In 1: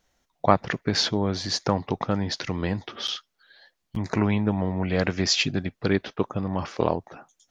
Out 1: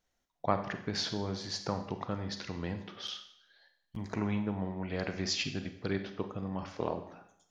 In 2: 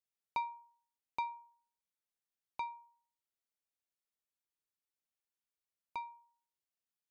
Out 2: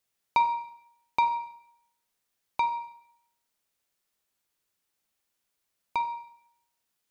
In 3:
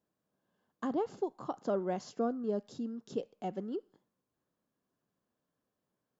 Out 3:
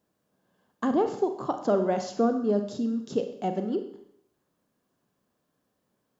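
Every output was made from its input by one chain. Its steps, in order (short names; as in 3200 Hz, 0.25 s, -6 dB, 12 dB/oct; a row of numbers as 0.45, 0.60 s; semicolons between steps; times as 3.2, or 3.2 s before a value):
Schroeder reverb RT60 0.71 s, combs from 31 ms, DRR 7.5 dB; normalise peaks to -12 dBFS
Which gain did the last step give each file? -11.0, +12.5, +8.5 dB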